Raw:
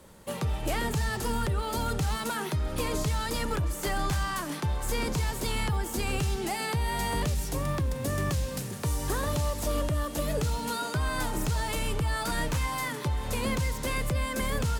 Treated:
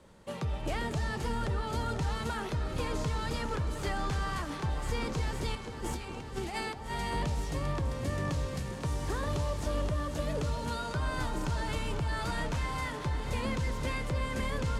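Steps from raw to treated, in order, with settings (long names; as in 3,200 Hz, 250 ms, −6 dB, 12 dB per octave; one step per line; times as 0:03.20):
0:05.55–0:06.91: compressor whose output falls as the input rises −34 dBFS, ratio −0.5
high-frequency loss of the air 61 metres
delay that swaps between a low-pass and a high-pass 249 ms, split 1,300 Hz, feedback 85%, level −9 dB
level −4 dB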